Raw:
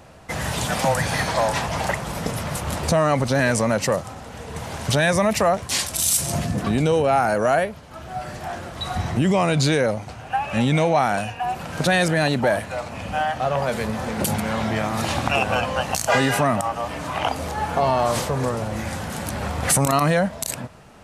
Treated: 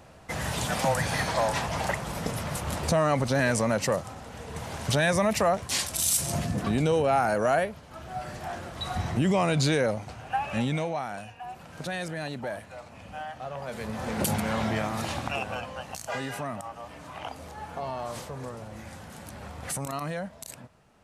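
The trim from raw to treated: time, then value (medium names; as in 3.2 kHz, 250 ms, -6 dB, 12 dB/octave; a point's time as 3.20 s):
10.47 s -5 dB
11.05 s -14.5 dB
13.60 s -14.5 dB
14.13 s -4 dB
14.67 s -4 dB
15.77 s -14.5 dB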